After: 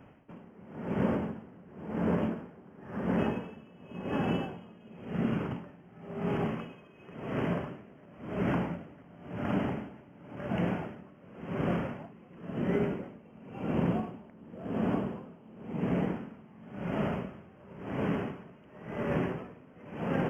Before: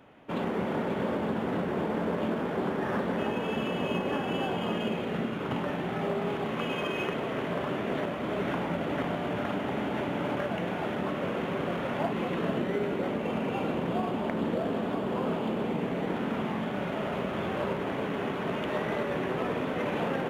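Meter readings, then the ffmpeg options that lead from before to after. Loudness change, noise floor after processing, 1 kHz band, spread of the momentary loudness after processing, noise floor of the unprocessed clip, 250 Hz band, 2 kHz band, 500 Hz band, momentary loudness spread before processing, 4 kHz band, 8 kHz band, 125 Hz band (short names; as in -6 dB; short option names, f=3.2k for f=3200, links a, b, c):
-2.5 dB, -55 dBFS, -7.5 dB, 20 LU, -33 dBFS, -2.0 dB, -7.5 dB, -6.0 dB, 2 LU, -11.0 dB, n/a, +0.5 dB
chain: -af "asuperstop=centerf=3900:order=8:qfactor=2.4,bass=f=250:g=9,treble=f=4k:g=-5,aeval=exprs='val(0)*pow(10,-26*(0.5-0.5*cos(2*PI*0.94*n/s))/20)':c=same,volume=-1dB"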